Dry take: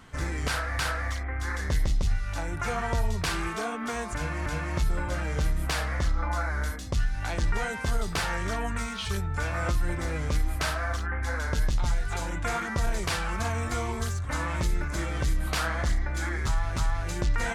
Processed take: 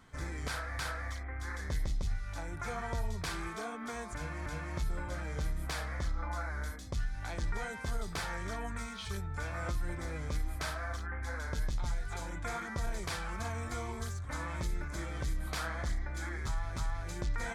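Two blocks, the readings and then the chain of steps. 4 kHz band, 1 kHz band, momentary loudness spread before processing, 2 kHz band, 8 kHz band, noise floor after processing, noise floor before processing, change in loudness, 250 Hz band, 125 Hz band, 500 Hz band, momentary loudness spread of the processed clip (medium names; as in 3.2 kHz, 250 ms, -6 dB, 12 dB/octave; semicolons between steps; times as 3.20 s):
-9.0 dB, -8.5 dB, 3 LU, -8.5 dB, -8.5 dB, -43 dBFS, -34 dBFS, -8.5 dB, -8.5 dB, -8.5 dB, -8.5 dB, 3 LU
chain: band-stop 2.8 kHz, Q 9; trim -8.5 dB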